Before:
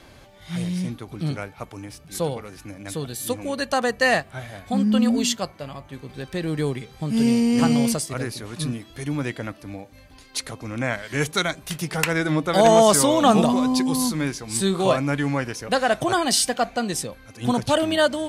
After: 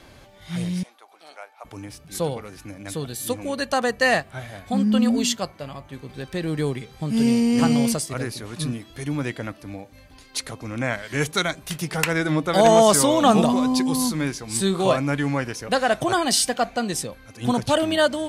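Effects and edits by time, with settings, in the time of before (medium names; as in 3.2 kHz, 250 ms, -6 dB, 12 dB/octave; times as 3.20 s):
0.83–1.65 s: ladder high-pass 600 Hz, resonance 45%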